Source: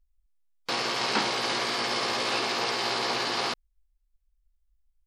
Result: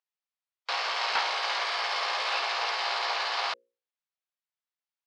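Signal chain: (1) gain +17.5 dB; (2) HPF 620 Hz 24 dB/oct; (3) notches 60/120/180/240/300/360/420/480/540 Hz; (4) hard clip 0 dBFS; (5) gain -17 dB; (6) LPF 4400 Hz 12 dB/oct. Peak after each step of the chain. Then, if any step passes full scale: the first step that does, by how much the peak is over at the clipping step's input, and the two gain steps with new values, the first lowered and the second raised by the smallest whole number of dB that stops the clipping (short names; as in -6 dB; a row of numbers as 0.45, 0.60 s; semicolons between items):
+5.0, +5.5, +5.5, 0.0, -17.0, -16.5 dBFS; step 1, 5.5 dB; step 1 +11.5 dB, step 5 -11 dB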